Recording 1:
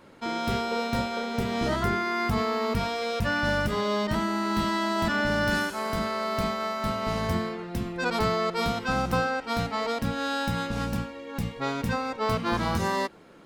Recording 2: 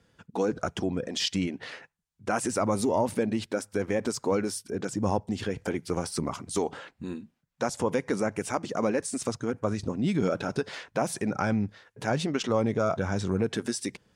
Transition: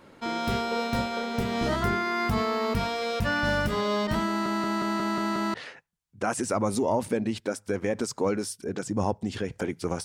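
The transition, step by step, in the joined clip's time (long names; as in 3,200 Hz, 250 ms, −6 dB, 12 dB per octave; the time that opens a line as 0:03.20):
recording 1
0:04.28: stutter in place 0.18 s, 7 plays
0:05.54: continue with recording 2 from 0:01.60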